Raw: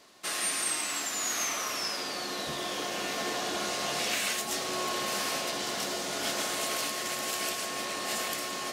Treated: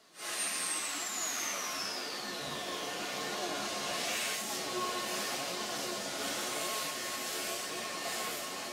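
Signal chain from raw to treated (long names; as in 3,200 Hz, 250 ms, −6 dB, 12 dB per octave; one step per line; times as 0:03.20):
random phases in long frames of 200 ms
flanger 0.89 Hz, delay 4.4 ms, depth 7.9 ms, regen +56%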